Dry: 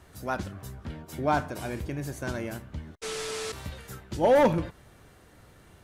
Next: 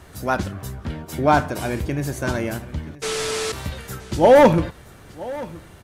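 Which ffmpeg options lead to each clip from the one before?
-af "aecho=1:1:974:0.112,volume=2.82"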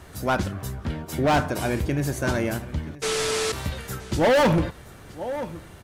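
-af "asoftclip=type=hard:threshold=0.158"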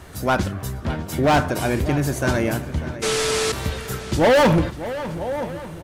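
-filter_complex "[0:a]asplit=2[s0][s1];[s1]adelay=596,lowpass=f=3600:p=1,volume=0.211,asplit=2[s2][s3];[s3]adelay=596,lowpass=f=3600:p=1,volume=0.48,asplit=2[s4][s5];[s5]adelay=596,lowpass=f=3600:p=1,volume=0.48,asplit=2[s6][s7];[s7]adelay=596,lowpass=f=3600:p=1,volume=0.48,asplit=2[s8][s9];[s9]adelay=596,lowpass=f=3600:p=1,volume=0.48[s10];[s0][s2][s4][s6][s8][s10]amix=inputs=6:normalize=0,volume=1.5"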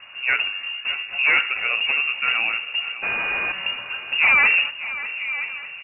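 -af "lowpass=f=2500:t=q:w=0.5098,lowpass=f=2500:t=q:w=0.6013,lowpass=f=2500:t=q:w=0.9,lowpass=f=2500:t=q:w=2.563,afreqshift=-2900,volume=0.841"

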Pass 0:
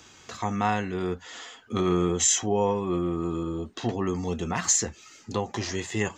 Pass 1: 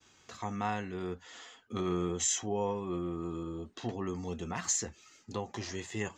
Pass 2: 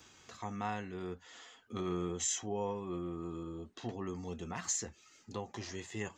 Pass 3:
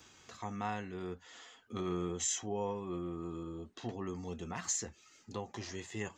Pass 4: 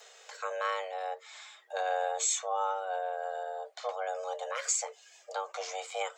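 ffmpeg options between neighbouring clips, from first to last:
-af "agate=range=0.0224:threshold=0.00355:ratio=3:detection=peak,volume=0.376"
-af "acompressor=mode=upward:threshold=0.00398:ratio=2.5,volume=0.631"
-af anull
-af "afreqshift=370,volume=1.78"

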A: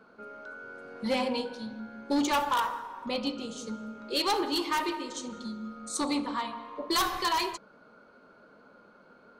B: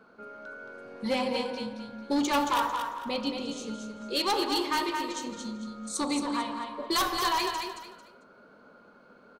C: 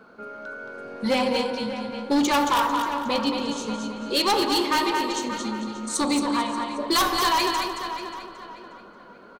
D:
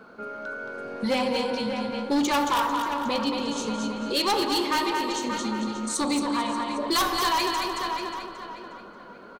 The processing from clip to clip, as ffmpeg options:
-af "aecho=1:1:223|446|669:0.501|0.135|0.0365"
-filter_complex "[0:a]asplit=2[s0][s1];[s1]adelay=584,lowpass=f=3200:p=1,volume=0.299,asplit=2[s2][s3];[s3]adelay=584,lowpass=f=3200:p=1,volume=0.34,asplit=2[s4][s5];[s5]adelay=584,lowpass=f=3200:p=1,volume=0.34,asplit=2[s6][s7];[s7]adelay=584,lowpass=f=3200:p=1,volume=0.34[s8];[s0][s2][s4][s6][s8]amix=inputs=5:normalize=0,volume=15,asoftclip=hard,volume=0.0668,volume=2.11"
-af "alimiter=limit=0.0841:level=0:latency=1:release=66,volume=1.26"

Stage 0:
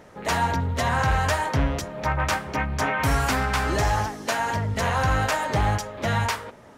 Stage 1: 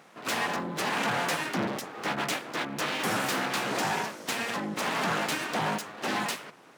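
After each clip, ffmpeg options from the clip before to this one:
-af "aeval=exprs='abs(val(0))':c=same,highpass=f=150:w=0.5412,highpass=f=150:w=1.3066,volume=0.841"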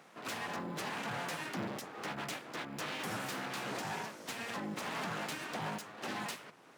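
-filter_complex "[0:a]acrossover=split=140[s0][s1];[s0]acrusher=samples=18:mix=1:aa=0.000001[s2];[s1]alimiter=level_in=1.19:limit=0.0631:level=0:latency=1:release=477,volume=0.841[s3];[s2][s3]amix=inputs=2:normalize=0,volume=0.631"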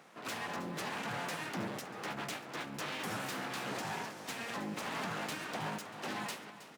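-af "aecho=1:1:319|638|957|1276|1595|1914:0.2|0.114|0.0648|0.037|0.0211|0.012"

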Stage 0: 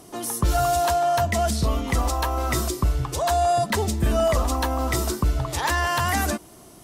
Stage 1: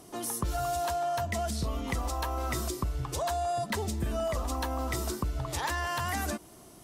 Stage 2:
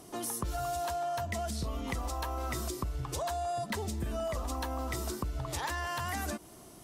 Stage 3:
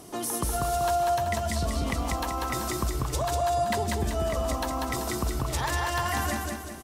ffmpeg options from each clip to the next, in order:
-af "acompressor=threshold=0.0708:ratio=6,volume=0.562"
-af "acompressor=threshold=0.02:ratio=2"
-af "aecho=1:1:192|384|576|768|960|1152:0.708|0.311|0.137|0.0603|0.0265|0.0117,volume=1.78"

